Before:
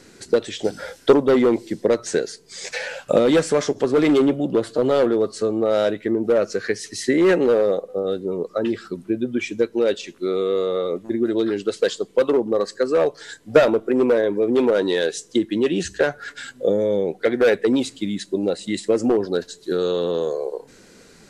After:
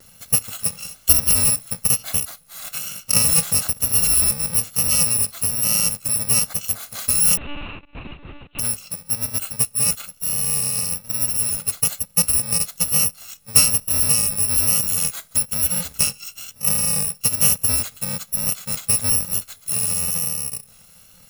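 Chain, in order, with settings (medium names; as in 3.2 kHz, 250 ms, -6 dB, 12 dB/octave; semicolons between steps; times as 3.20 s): bit-reversed sample order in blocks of 128 samples; vibrato 1.1 Hz 31 cents; 7.37–8.59 s: monotone LPC vocoder at 8 kHz 290 Hz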